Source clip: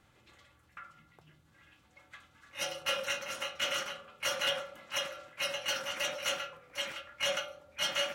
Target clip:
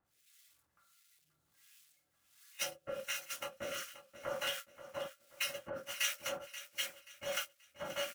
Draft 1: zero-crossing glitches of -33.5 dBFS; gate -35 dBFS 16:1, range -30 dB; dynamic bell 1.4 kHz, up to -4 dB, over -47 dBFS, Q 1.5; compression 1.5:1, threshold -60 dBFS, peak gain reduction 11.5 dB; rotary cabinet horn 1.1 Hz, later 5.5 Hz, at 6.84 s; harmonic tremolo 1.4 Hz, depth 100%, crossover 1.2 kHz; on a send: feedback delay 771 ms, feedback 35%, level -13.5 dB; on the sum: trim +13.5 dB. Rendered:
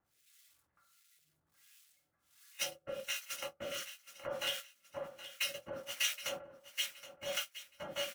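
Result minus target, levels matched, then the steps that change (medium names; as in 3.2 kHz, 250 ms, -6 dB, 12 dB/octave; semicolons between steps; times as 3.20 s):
echo 240 ms late; 1 kHz band -3.0 dB
change: dynamic bell 3.5 kHz, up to -4 dB, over -47 dBFS, Q 1.5; change: feedback delay 531 ms, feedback 35%, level -13.5 dB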